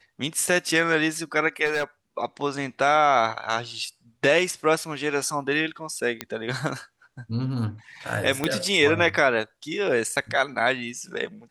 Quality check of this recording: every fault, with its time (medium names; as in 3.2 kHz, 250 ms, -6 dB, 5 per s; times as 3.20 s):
1.65–1.84 s: clipped -20.5 dBFS
6.21 s: pop -11 dBFS
8.44 s: pop -9 dBFS